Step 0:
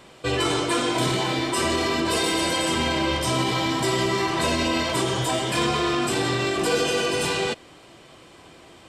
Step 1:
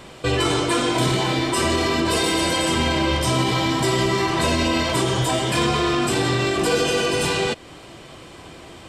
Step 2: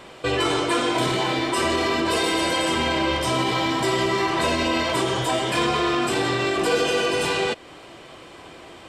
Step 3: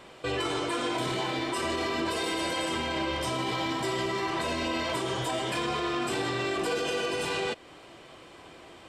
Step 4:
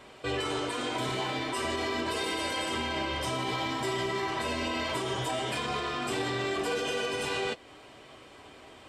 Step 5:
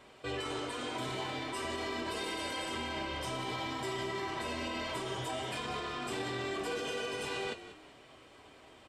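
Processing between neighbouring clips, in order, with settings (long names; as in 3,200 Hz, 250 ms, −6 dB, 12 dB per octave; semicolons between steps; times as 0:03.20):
low-shelf EQ 130 Hz +6.5 dB; in parallel at +0.5 dB: downward compressor, threshold −32 dBFS, peak gain reduction 14 dB
bass and treble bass −8 dB, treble −5 dB
brickwall limiter −14.5 dBFS, peak gain reduction 4.5 dB; level −6.5 dB
notch comb filter 170 Hz
echo with shifted repeats 187 ms, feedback 31%, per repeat −39 Hz, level −13 dB; level −6 dB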